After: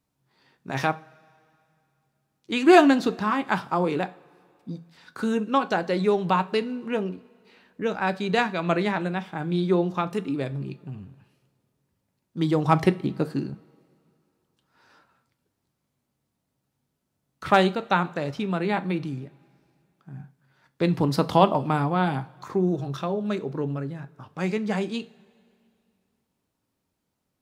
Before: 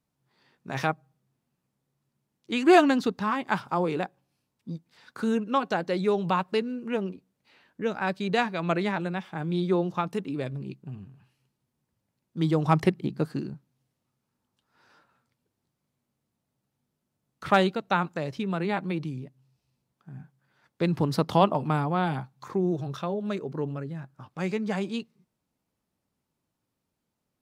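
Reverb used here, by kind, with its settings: two-slope reverb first 0.3 s, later 2.5 s, from -22 dB, DRR 11 dB; gain +2.5 dB

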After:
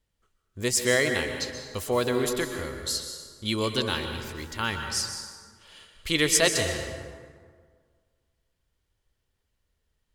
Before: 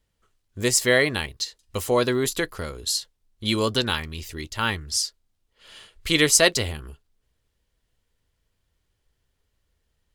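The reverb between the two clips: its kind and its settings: plate-style reverb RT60 1.8 s, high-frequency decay 0.55×, pre-delay 0.11 s, DRR 5 dB; gain -4.5 dB

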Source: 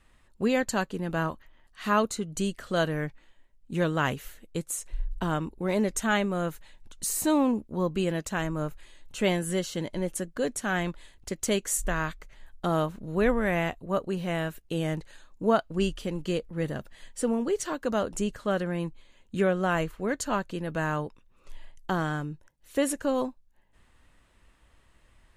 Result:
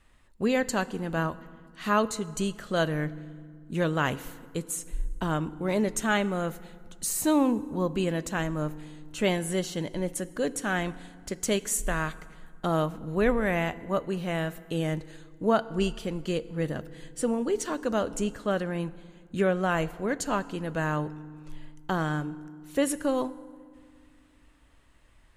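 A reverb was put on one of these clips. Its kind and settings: FDN reverb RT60 1.9 s, low-frequency decay 1.5×, high-frequency decay 0.65×, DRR 16 dB

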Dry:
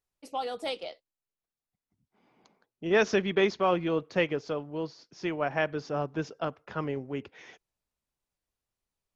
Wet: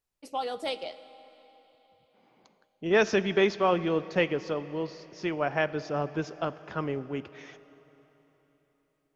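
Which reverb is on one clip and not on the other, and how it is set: digital reverb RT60 4 s, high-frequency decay 0.9×, pre-delay 5 ms, DRR 15.5 dB; gain +1 dB

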